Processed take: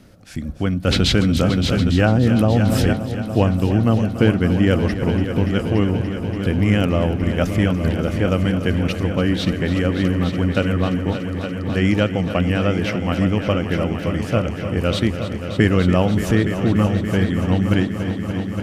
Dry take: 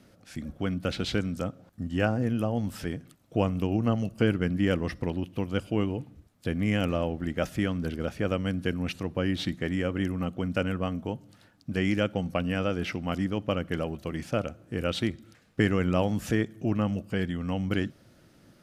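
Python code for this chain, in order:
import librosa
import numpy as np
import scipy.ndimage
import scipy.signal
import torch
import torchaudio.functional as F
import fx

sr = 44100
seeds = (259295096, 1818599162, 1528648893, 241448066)

y = fx.low_shelf(x, sr, hz=84.0, db=11.0)
y = fx.echo_heads(y, sr, ms=288, heads='all three', feedback_pct=70, wet_db=-13)
y = fx.env_flatten(y, sr, amount_pct=70, at=(0.87, 2.93))
y = F.gain(torch.from_numpy(y), 7.0).numpy()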